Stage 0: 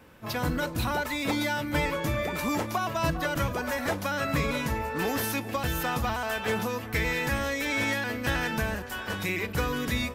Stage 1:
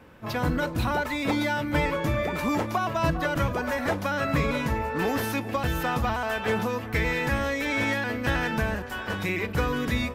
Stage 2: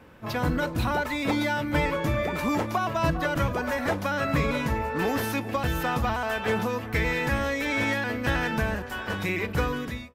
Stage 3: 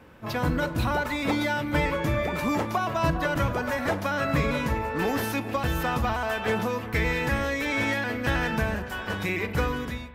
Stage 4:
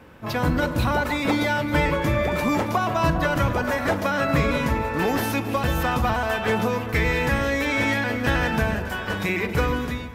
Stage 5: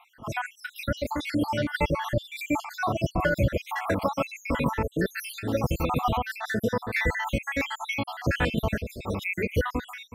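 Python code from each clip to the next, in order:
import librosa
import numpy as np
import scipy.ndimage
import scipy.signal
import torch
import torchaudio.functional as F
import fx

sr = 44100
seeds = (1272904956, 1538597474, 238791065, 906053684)

y1 = fx.high_shelf(x, sr, hz=4000.0, db=-9.0)
y1 = y1 * 10.0 ** (3.0 / 20.0)
y2 = fx.fade_out_tail(y1, sr, length_s=0.53)
y3 = fx.rev_spring(y2, sr, rt60_s=1.9, pass_ms=(42,), chirp_ms=35, drr_db=13.5)
y4 = fx.echo_alternate(y3, sr, ms=137, hz=890.0, feedback_pct=53, wet_db=-9)
y4 = y4 * 10.0 ** (3.5 / 20.0)
y5 = fx.spec_dropout(y4, sr, seeds[0], share_pct=69)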